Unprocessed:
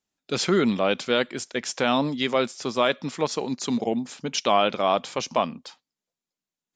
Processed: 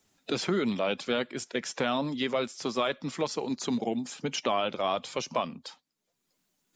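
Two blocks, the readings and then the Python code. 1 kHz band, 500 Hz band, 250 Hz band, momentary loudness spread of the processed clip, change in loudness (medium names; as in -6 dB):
-7.0 dB, -6.0 dB, -5.0 dB, 5 LU, -6.0 dB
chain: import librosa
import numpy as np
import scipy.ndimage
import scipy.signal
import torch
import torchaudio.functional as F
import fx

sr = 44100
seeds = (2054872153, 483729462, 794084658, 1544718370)

y = fx.spec_quant(x, sr, step_db=15)
y = fx.band_squash(y, sr, depth_pct=70)
y = y * librosa.db_to_amplitude(-6.0)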